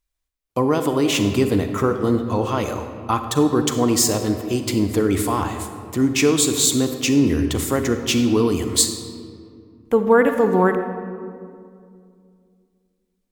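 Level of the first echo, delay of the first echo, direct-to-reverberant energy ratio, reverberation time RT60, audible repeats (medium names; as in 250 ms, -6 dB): no echo, no echo, 7.0 dB, 2.3 s, no echo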